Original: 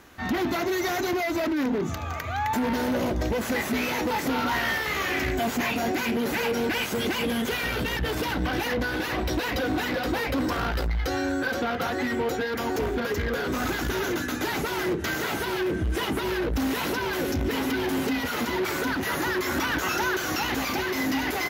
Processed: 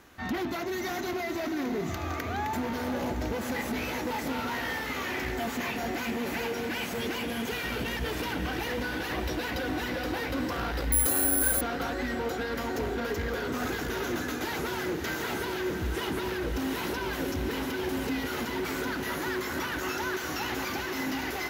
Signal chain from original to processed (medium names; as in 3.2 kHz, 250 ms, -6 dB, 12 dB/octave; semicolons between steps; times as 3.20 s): gain riding 0.5 s; echo that smears into a reverb 590 ms, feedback 67%, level -8 dB; 10.92–11.61 s: careless resampling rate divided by 4×, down filtered, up zero stuff; trim -6 dB